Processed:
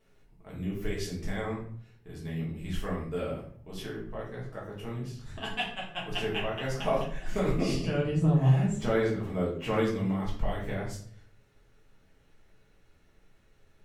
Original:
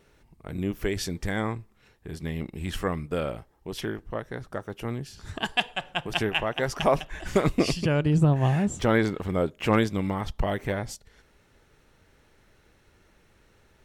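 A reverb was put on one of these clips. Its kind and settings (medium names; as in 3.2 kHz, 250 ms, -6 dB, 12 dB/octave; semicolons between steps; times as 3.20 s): simulated room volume 67 m³, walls mixed, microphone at 1.5 m; trim -13 dB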